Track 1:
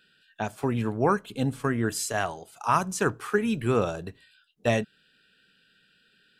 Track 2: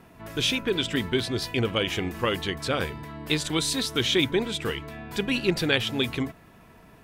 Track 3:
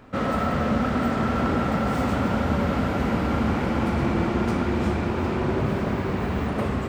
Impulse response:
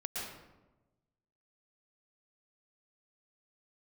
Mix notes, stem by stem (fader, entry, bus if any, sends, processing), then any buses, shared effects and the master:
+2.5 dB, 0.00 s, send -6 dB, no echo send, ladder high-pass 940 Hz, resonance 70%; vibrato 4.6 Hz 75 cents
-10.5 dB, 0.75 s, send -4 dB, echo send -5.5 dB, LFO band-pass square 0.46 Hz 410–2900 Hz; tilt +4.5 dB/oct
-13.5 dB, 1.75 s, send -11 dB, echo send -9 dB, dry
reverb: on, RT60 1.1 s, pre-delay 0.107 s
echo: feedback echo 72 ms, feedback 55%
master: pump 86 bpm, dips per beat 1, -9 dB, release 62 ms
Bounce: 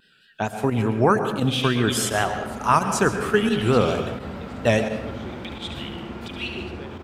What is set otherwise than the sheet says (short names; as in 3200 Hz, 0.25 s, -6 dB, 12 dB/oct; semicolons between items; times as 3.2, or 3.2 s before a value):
stem 1: missing ladder high-pass 940 Hz, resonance 70%; stem 2: entry 0.75 s -> 1.10 s